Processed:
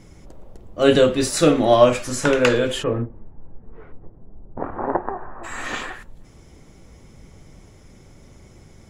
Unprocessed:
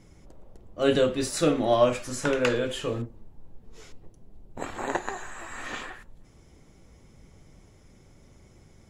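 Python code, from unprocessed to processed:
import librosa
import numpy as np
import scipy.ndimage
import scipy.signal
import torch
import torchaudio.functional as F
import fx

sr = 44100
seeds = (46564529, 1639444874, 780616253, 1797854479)

y = fx.lowpass(x, sr, hz=fx.line((2.82, 2100.0), (5.43, 1100.0)), slope=24, at=(2.82, 5.43), fade=0.02)
y = y * librosa.db_to_amplitude(7.5)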